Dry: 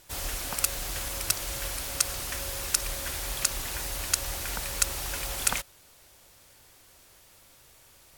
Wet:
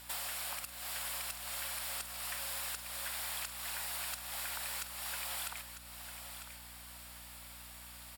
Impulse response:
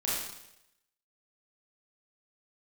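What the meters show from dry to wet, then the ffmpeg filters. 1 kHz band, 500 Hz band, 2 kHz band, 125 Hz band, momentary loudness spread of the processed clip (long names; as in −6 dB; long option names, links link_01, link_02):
−6.5 dB, −12.5 dB, −6.5 dB, −15.0 dB, 11 LU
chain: -filter_complex "[0:a]highpass=frequency=660:width=0.5412,highpass=frequency=660:width=1.3066,equalizer=frequency=6200:width=6.4:gain=-14,acompressor=threshold=-42dB:ratio=16,asoftclip=type=hard:threshold=-39dB,aeval=exprs='val(0)+0.000631*(sin(2*PI*60*n/s)+sin(2*PI*2*60*n/s)/2+sin(2*PI*3*60*n/s)/3+sin(2*PI*4*60*n/s)/4+sin(2*PI*5*60*n/s)/5)':channel_layout=same,asplit=2[link_01][link_02];[link_02]adelay=46,volume=-13dB[link_03];[link_01][link_03]amix=inputs=2:normalize=0,aecho=1:1:949:0.335,volume=5.5dB"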